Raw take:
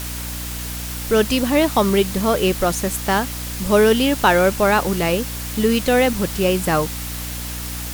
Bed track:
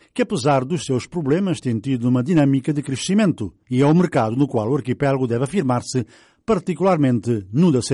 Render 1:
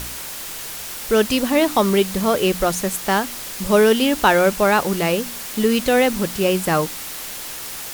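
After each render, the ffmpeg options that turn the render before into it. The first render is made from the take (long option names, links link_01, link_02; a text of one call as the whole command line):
ffmpeg -i in.wav -af "bandreject=frequency=60:width_type=h:width=4,bandreject=frequency=120:width_type=h:width=4,bandreject=frequency=180:width_type=h:width=4,bandreject=frequency=240:width_type=h:width=4,bandreject=frequency=300:width_type=h:width=4" out.wav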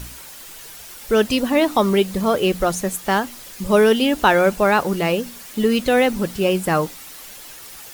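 ffmpeg -i in.wav -af "afftdn=noise_reduction=9:noise_floor=-32" out.wav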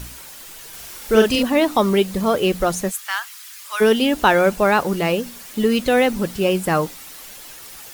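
ffmpeg -i in.wav -filter_complex "[0:a]asettb=1/sr,asplit=3[link_01][link_02][link_03];[link_01]atrim=end=0.694[link_04];[link_02]atrim=start=0.69:end=1.43,asetpts=PTS-STARTPTS,afade=type=in:duration=0.004:curve=qsin,afade=type=out:start_time=0.736:duration=0.004:curve=qsin,asplit=2[link_05][link_06];[link_06]adelay=41,volume=-2dB[link_07];[link_05][link_07]amix=inputs=2:normalize=0,atrim=end_sample=32634[link_08];[link_03]atrim=start=1.426[link_09];[link_04][link_08]acrossfade=duration=0.004:curve1=hsin:curve2=qsin[link_10];[link_10][link_09]acrossfade=duration=0.004:curve1=qsin:curve2=hsin,asplit=3[link_11][link_12][link_13];[link_11]afade=type=out:start_time=2.9:duration=0.02[link_14];[link_12]highpass=frequency=1200:width=0.5412,highpass=frequency=1200:width=1.3066,afade=type=in:start_time=2.9:duration=0.02,afade=type=out:start_time=3.8:duration=0.02[link_15];[link_13]afade=type=in:start_time=3.8:duration=0.02[link_16];[link_14][link_15][link_16]amix=inputs=3:normalize=0" out.wav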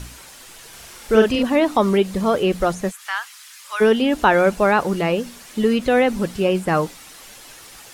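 ffmpeg -i in.wav -filter_complex "[0:a]acrossover=split=2700[link_01][link_02];[link_02]acompressor=threshold=-34dB:ratio=4:attack=1:release=60[link_03];[link_01][link_03]amix=inputs=2:normalize=0,lowpass=11000" out.wav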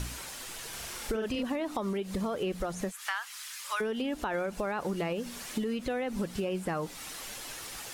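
ffmpeg -i in.wav -af "alimiter=limit=-15dB:level=0:latency=1:release=131,acompressor=threshold=-31dB:ratio=4" out.wav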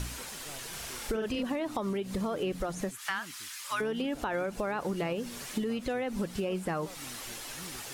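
ffmpeg -i in.wav -i bed.wav -filter_complex "[1:a]volume=-33.5dB[link_01];[0:a][link_01]amix=inputs=2:normalize=0" out.wav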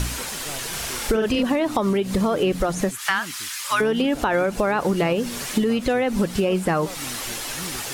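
ffmpeg -i in.wav -af "volume=11.5dB" out.wav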